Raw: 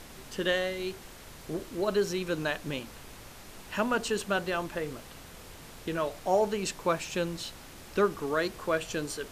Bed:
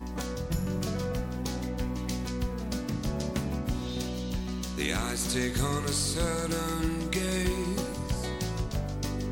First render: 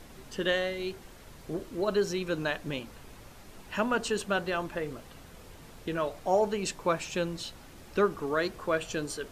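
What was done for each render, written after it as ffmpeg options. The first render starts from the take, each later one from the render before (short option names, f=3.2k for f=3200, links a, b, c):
-af "afftdn=nr=6:nf=-49"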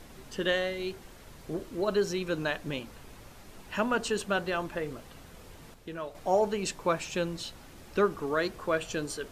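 -filter_complex "[0:a]asplit=3[a][b][c];[a]atrim=end=5.742[d];[b]atrim=start=5.738:end=6.152,asetpts=PTS-STARTPTS,volume=-7dB[e];[c]atrim=start=6.148[f];[d][e]acrossfade=d=0.004:c1=hsin:c2=hsin[g];[g][f]acrossfade=d=0.004:c1=hsin:c2=hsin"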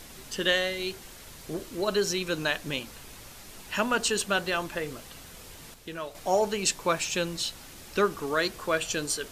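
-af "highshelf=f=2.2k:g=11"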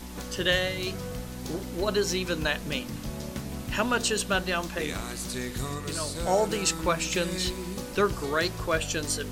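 -filter_complex "[1:a]volume=-4.5dB[a];[0:a][a]amix=inputs=2:normalize=0"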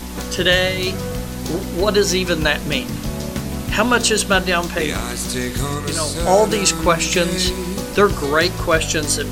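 -af "volume=10.5dB,alimiter=limit=-2dB:level=0:latency=1"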